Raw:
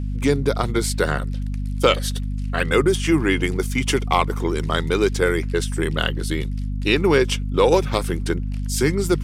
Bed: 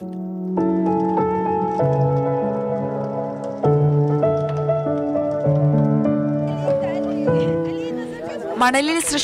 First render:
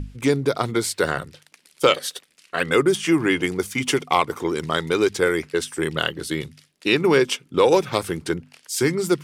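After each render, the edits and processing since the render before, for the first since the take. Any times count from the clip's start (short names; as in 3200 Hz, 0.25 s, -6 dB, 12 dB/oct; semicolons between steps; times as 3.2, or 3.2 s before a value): notches 50/100/150/200/250 Hz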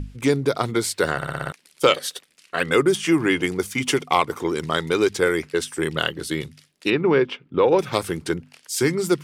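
1.16 stutter in place 0.06 s, 6 plays; 6.9–7.79 air absorption 370 m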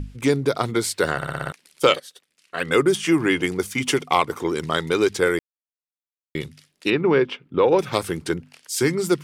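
2–2.76 fade in quadratic, from -14.5 dB; 5.39–6.35 mute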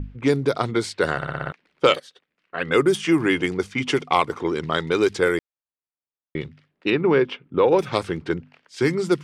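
low-pass opened by the level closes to 1500 Hz, open at -14.5 dBFS; high shelf 5400 Hz -4.5 dB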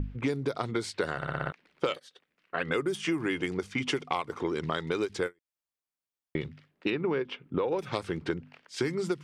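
compressor 6:1, threshold -27 dBFS, peak gain reduction 15 dB; ending taper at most 500 dB/s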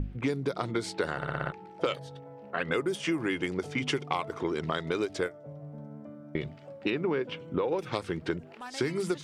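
add bed -27 dB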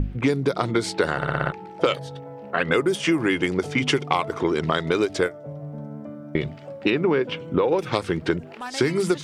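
gain +8.5 dB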